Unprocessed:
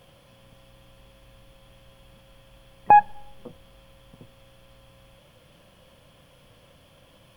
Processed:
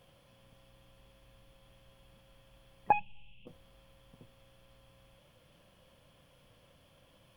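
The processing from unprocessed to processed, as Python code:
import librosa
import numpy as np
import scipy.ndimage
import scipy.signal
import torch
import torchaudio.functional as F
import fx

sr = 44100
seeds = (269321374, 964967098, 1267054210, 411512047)

y = fx.curve_eq(x, sr, hz=(170.0, 340.0, 990.0, 1700.0, 2700.0, 4400.0), db=(0, -15, -16, -29, 14, -17), at=(2.92, 3.47))
y = y * 10.0 ** (-8.5 / 20.0)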